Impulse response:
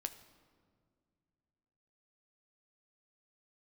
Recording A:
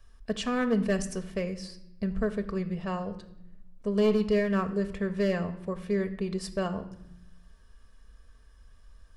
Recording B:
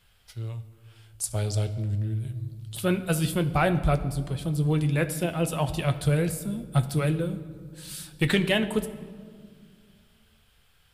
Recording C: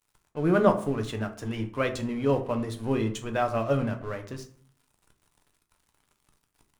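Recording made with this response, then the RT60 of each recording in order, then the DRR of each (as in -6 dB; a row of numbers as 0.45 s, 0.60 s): B; 0.80 s, 2.1 s, 0.50 s; 6.0 dB, 8.0 dB, 4.5 dB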